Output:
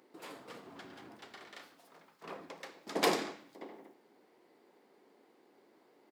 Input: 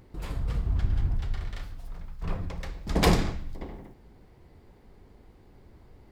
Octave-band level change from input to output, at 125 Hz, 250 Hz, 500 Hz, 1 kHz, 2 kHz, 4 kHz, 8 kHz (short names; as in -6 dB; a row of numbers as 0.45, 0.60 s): -28.0, -10.5, -4.5, -4.5, -4.5, -4.5, -4.5 dB